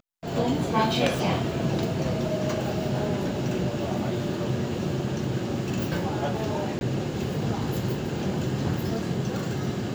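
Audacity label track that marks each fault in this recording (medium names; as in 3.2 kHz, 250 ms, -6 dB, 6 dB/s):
6.790000	6.810000	dropout 21 ms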